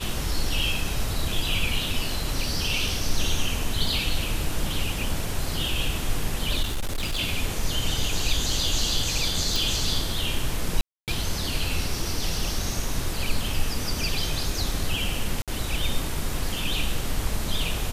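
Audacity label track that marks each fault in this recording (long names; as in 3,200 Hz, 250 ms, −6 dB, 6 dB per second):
6.620000	7.200000	clipping −23 dBFS
9.560000	9.560000	click
10.810000	11.080000	drop-out 268 ms
15.420000	15.480000	drop-out 57 ms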